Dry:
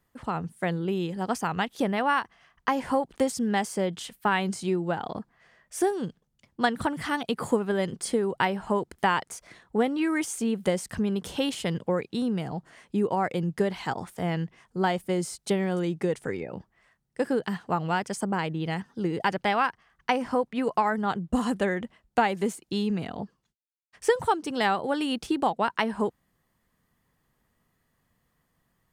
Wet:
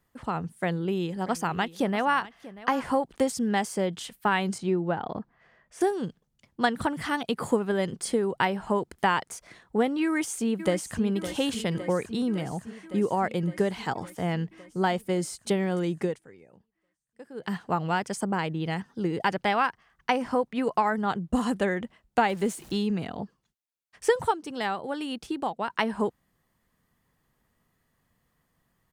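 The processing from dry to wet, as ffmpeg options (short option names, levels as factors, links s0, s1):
-filter_complex "[0:a]asettb=1/sr,asplit=3[s0][s1][s2];[s0]atrim=end=0.564[s3];[s1]atrim=start=0.56:end=2.97,asetpts=PTS-STARTPTS,afade=t=in:d=0.004:c=qsin,afade=t=out:st=2.406:d=0.004:c=qsin,aecho=1:1:638:0.133,atrim=end_sample=106281[s4];[s2]atrim=start=2.966[s5];[s3][s4]acrossfade=d=0.004:c1=hsin:c2=qsin[s6];[s6][s5]acrossfade=d=0.004:c1=qsin:c2=hsin,asettb=1/sr,asplit=3[s7][s8][s9];[s7]atrim=end=4.584[s10];[s8]atrim=start=4.58:end=5.81,asetpts=PTS-STARTPTS,afade=t=in:d=0.004:c=qsin,afade=t=out:st=1.226:d=0.004:c=qsin,aemphasis=mode=reproduction:type=75fm[s11];[s9]atrim=start=5.806[s12];[s10][s11]acrossfade=d=0.004:c1=hsin:c2=qsin[s13];[s13][s12]acrossfade=d=0.004:c1=qsin:c2=hsin,asplit=2[s14][s15];[s15]afade=t=in:st=10.03:d=0.01,afade=t=out:st=11.04:d=0.01,aecho=0:1:560|1120|1680|2240|2800|3360|3920|4480|5040|5600|6160|6720:0.281838|0.211379|0.158534|0.118901|0.0891754|0.0668815|0.0501612|0.0376209|0.0282157|0.0211617|0.0158713|0.0119035[s16];[s14][s16]amix=inputs=2:normalize=0,asettb=1/sr,asplit=3[s17][s18][s19];[s17]atrim=end=22.294[s20];[s18]atrim=start=22.29:end=22.77,asetpts=PTS-STARTPTS,afade=t=in:d=0.004:c=qsin,afade=t=out:st=0.476:d=0.004:c=qsin,aeval=exprs='val(0)+0.5*0.00668*sgn(val(0))':c=same[s21];[s19]atrim=start=22.766[s22];[s20][s21]acrossfade=d=0.004:c1=hsin:c2=qsin[s23];[s23][s22]acrossfade=d=0.004:c1=qsin:c2=hsin,asplit=5[s24][s25][s26][s27][s28];[s24]atrim=end=16.21,asetpts=PTS-STARTPTS,afade=t=out:st=16.04:d=0.17:silence=0.112202[s29];[s25]atrim=start=16.21:end=17.34,asetpts=PTS-STARTPTS,volume=0.112[s30];[s26]atrim=start=17.34:end=24.312,asetpts=PTS-STARTPTS,afade=t=in:d=0.17:silence=0.112202[s31];[s27]atrim=start=24.308:end=25.702,asetpts=PTS-STARTPTS,volume=0.562[s32];[s28]atrim=start=25.698[s33];[s29][s30][s31]concat=n=3:v=0:a=1[s34];[s34][s32]acrossfade=d=0.004:c1=hsin:c2=hsin[s35];[s35][s33]acrossfade=d=0.004:c1=hsin:c2=hsin"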